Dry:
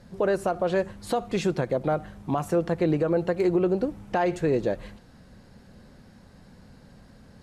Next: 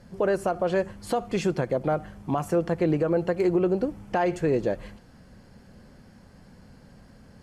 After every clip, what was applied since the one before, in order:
notch filter 3,800 Hz, Q 9.3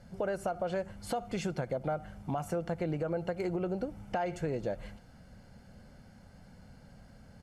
comb filter 1.4 ms, depth 39%
downward compressor 2.5 to 1, threshold −27 dBFS, peak gain reduction 6 dB
level −4.5 dB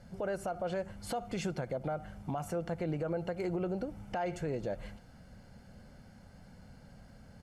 brickwall limiter −26.5 dBFS, peak gain reduction 4.5 dB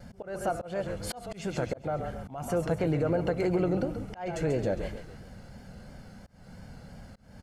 echo with shifted repeats 136 ms, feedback 43%, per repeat −34 Hz, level −9 dB
pitch vibrato 2.9 Hz 54 cents
volume swells 263 ms
level +7 dB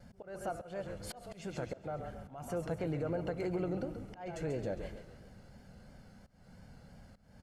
convolution reverb RT60 1.9 s, pre-delay 110 ms, DRR 19 dB
level −8.5 dB

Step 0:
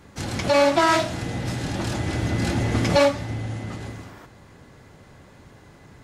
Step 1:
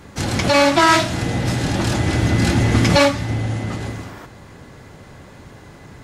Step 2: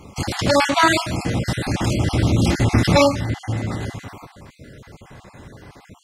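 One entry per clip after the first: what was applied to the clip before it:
dynamic equaliser 580 Hz, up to −6 dB, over −31 dBFS, Q 1.1; level +7.5 dB
time-frequency cells dropped at random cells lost 36%

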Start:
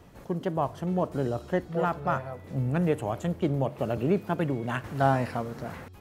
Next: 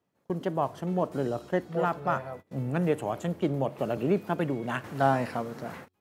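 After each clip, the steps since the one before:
high-pass filter 150 Hz 12 dB per octave
noise gate −42 dBFS, range −24 dB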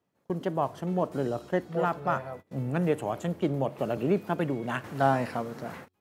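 no processing that can be heard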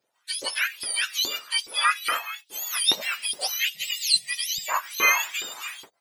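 frequency axis turned over on the octave scale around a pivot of 1,300 Hz
auto-filter high-pass saw up 2.4 Hz 340–4,100 Hz
gain on a spectral selection 0:03.75–0:04.69, 210–1,800 Hz −25 dB
level +6 dB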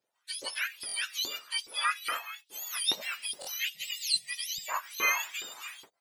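buffer that repeats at 0:00.87/0:03.40, samples 1,024, times 2
level −7.5 dB

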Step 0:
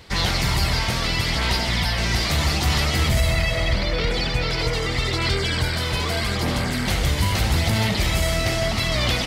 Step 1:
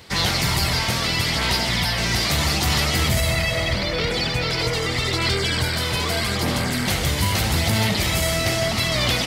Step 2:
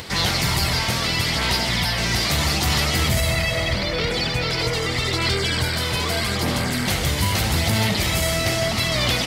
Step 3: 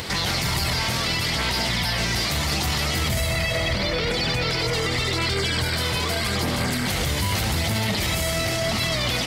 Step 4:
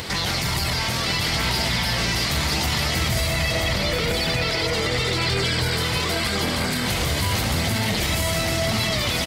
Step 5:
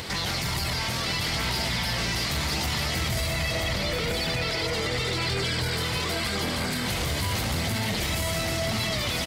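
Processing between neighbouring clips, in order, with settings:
high-pass filter 78 Hz 12 dB per octave; high-shelf EQ 7,400 Hz +6 dB; level +1 dB
upward compression, threshold −27 dBFS
brickwall limiter −19.5 dBFS, peak gain reduction 11 dB; level +4.5 dB
single-tap delay 979 ms −5.5 dB
soft clipping −15.5 dBFS, distortion −20 dB; level −3.5 dB

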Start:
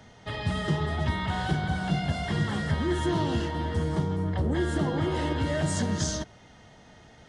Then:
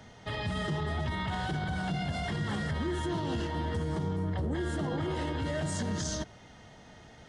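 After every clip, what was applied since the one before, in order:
brickwall limiter −24.5 dBFS, peak gain reduction 10 dB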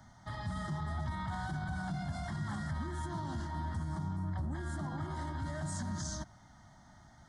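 phaser with its sweep stopped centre 1,100 Hz, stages 4
level −3 dB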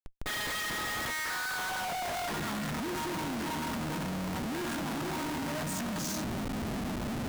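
harmonic generator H 5 −25 dB, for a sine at −27 dBFS
high-pass filter sweep 2,500 Hz → 240 Hz, 0:01.07–0:02.65
comparator with hysteresis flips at −54.5 dBFS
level +5.5 dB

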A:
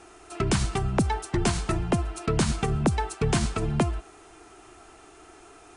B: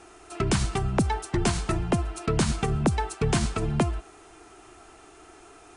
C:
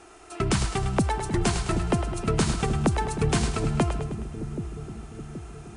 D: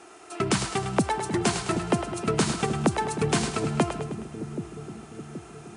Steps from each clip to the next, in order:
no processing that can be heard
echo with a time of its own for lows and highs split 470 Hz, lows 775 ms, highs 105 ms, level −8 dB
high-pass filter 160 Hz 12 dB per octave; level +1.5 dB

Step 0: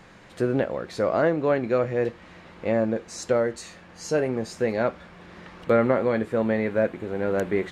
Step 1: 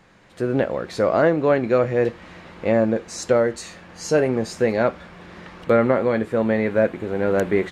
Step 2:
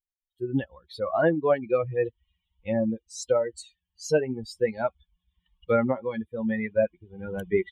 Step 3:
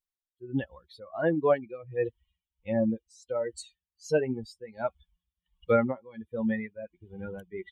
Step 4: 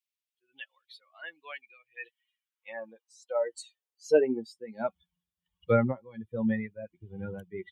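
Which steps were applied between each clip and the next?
automatic gain control gain up to 12.5 dB; level −4.5 dB
spectral dynamics exaggerated over time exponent 3
amplitude tremolo 1.4 Hz, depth 89%
high-pass filter sweep 2,500 Hz → 110 Hz, 0:01.89–0:05.53; level −1.5 dB

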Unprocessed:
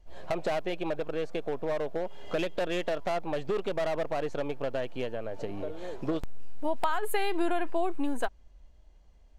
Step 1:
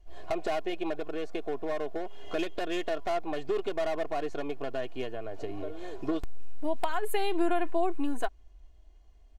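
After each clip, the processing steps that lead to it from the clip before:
comb filter 2.8 ms, depth 61%
level −2.5 dB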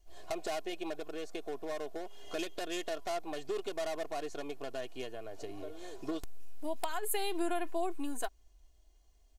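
bass and treble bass −3 dB, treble +13 dB
level −6 dB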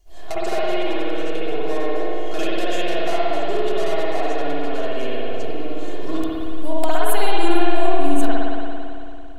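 spring reverb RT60 2.7 s, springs 56 ms, chirp 45 ms, DRR −8 dB
level +7 dB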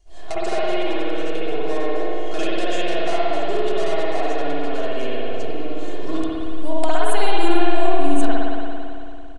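downsampling to 22,050 Hz

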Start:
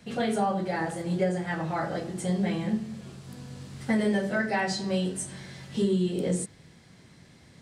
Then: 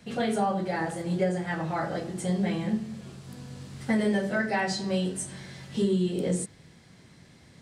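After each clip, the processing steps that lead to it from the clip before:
no processing that can be heard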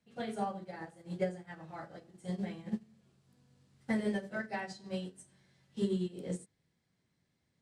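expander for the loud parts 2.5 to 1, over −35 dBFS
level −5 dB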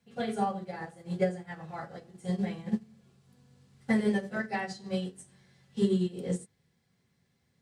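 notch comb filter 310 Hz
level +6.5 dB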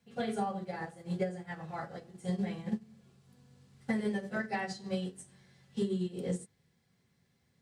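downward compressor 6 to 1, threshold −29 dBFS, peak gain reduction 9 dB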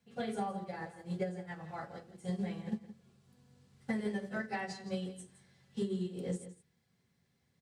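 single-tap delay 167 ms −13.5 dB
level −3 dB

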